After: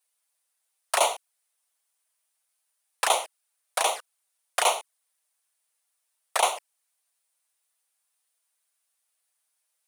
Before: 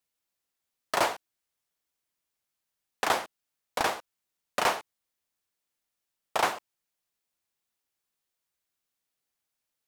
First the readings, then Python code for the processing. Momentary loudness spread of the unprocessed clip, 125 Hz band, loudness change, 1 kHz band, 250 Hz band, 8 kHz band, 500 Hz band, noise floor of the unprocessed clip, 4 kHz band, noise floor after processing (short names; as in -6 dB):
13 LU, under -35 dB, +3.5 dB, +2.5 dB, under -10 dB, +10.0 dB, +2.5 dB, -85 dBFS, +5.5 dB, -78 dBFS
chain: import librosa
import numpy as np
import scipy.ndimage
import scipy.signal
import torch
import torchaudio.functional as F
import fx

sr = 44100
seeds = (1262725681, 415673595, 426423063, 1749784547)

y = fx.env_flanger(x, sr, rest_ms=7.8, full_db=-25.0)
y = scipy.signal.sosfilt(scipy.signal.butter(4, 540.0, 'highpass', fs=sr, output='sos'), y)
y = fx.peak_eq(y, sr, hz=9400.0, db=12.0, octaves=0.41)
y = y * 10.0 ** (7.0 / 20.0)